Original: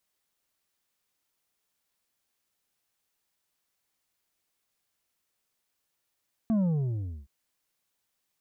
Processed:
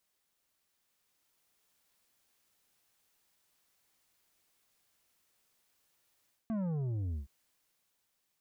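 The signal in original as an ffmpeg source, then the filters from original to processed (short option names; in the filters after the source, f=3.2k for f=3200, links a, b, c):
-f lavfi -i "aevalsrc='0.0708*clip((0.77-t)/0.67,0,1)*tanh(2*sin(2*PI*230*0.77/log(65/230)*(exp(log(65/230)*t/0.77)-1)))/tanh(2)':d=0.77:s=44100"
-af "dynaudnorm=f=260:g=9:m=5dB,asoftclip=type=tanh:threshold=-20dB,areverse,acompressor=threshold=-35dB:ratio=6,areverse"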